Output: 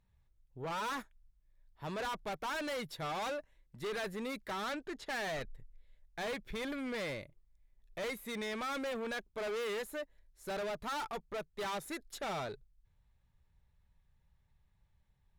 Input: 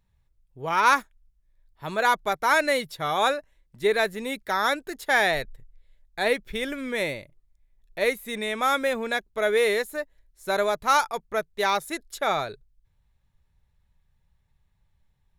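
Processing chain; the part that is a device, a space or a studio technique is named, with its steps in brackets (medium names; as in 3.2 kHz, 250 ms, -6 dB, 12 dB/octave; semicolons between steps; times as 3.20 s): 4.65–5.41 s: low-pass 6 kHz 12 dB/octave; tube preamp driven hard (valve stage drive 33 dB, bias 0.25; treble shelf 5.2 kHz -6 dB); trim -2.5 dB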